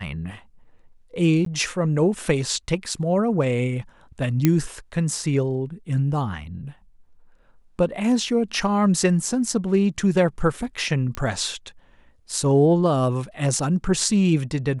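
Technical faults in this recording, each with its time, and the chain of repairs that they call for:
1.45–1.46 s: dropout 13 ms
4.45 s: pop -4 dBFS
11.15 s: pop -14 dBFS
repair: de-click; interpolate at 1.45 s, 13 ms

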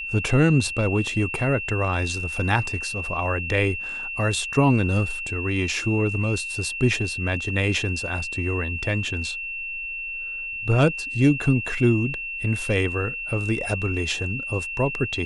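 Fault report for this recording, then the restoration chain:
whine 2.7 kHz -29 dBFS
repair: band-stop 2.7 kHz, Q 30

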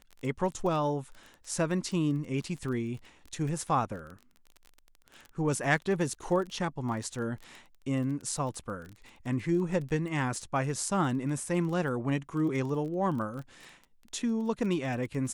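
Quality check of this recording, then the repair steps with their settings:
crackle 22 per s -37 dBFS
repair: de-click

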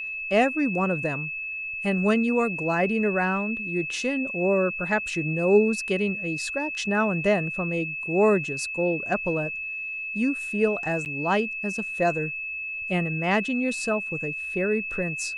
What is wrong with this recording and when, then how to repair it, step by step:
whine 2.6 kHz -30 dBFS
11.05–11.06 s: dropout 9 ms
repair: band-stop 2.6 kHz, Q 30; interpolate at 11.05 s, 9 ms

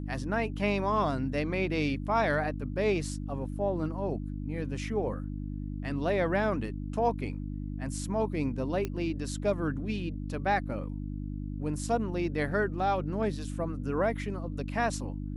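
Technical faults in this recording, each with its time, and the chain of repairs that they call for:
hum 50 Hz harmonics 6 -36 dBFS
8.85 s: pop -19 dBFS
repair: de-click; de-hum 50 Hz, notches 6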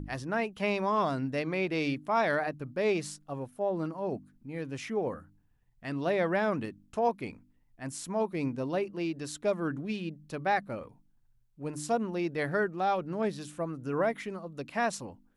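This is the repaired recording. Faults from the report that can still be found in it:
nothing left

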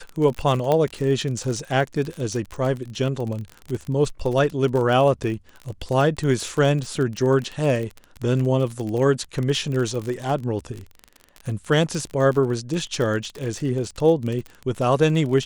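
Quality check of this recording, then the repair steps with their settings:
crackle 34 per s -26 dBFS
0.72 s: pop -9 dBFS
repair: de-click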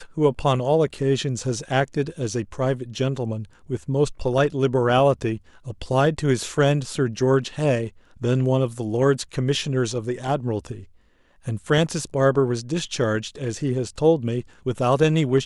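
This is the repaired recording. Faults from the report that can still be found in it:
nothing left

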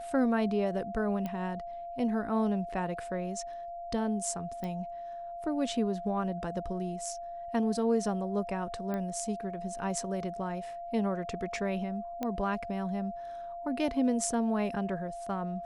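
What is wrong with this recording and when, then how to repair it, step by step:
whine 690 Hz -38 dBFS
1.26 s: pop -23 dBFS
4.64 s: pop -25 dBFS
8.94 s: pop -23 dBFS
12.23 s: pop -20 dBFS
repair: de-click; band-stop 690 Hz, Q 30

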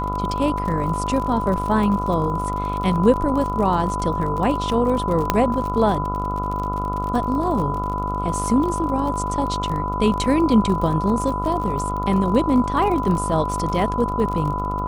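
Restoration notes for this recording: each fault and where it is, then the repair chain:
buzz 50 Hz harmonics 28 -27 dBFS
crackle 44 per s -27 dBFS
whine 1 kHz -25 dBFS
5.30 s: pop -2 dBFS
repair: de-click; de-hum 50 Hz, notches 28; band-stop 1 kHz, Q 30

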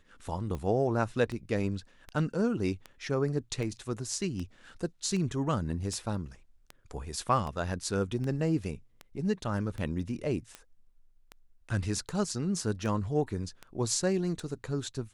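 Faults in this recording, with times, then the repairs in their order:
tick 78 rpm -25 dBFS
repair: de-click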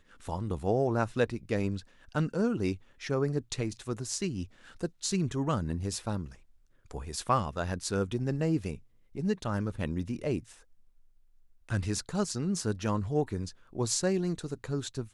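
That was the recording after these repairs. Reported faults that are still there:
nothing left

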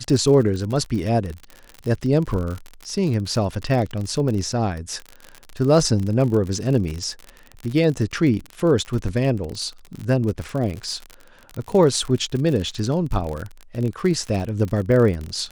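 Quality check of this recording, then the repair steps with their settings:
crackle 56 per s -26 dBFS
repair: de-click

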